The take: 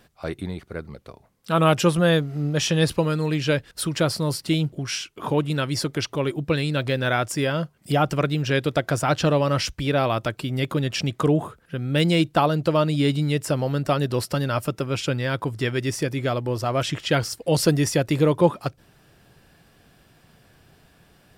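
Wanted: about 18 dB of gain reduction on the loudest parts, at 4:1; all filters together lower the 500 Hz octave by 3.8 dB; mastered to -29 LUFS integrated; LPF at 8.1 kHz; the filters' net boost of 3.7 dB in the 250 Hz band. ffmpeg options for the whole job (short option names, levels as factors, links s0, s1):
-af "lowpass=8100,equalizer=f=250:t=o:g=8,equalizer=f=500:t=o:g=-7,acompressor=threshold=0.0158:ratio=4,volume=2.66"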